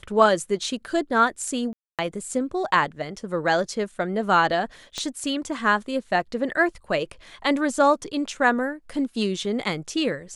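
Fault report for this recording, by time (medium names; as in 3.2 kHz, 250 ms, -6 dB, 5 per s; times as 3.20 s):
1.73–1.99 s: dropout 257 ms
4.98 s: pop -17 dBFS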